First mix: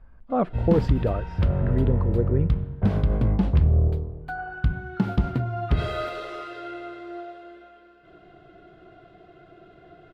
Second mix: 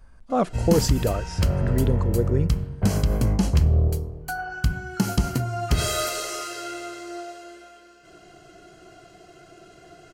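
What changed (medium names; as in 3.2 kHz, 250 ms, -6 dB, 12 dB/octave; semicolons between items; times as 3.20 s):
background: add Butterworth band-stop 3.6 kHz, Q 7.4; master: remove distance through air 450 m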